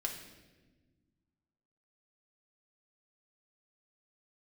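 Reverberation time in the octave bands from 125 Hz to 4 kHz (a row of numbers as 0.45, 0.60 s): 2.2, 2.2, 1.6, 1.0, 1.1, 1.0 s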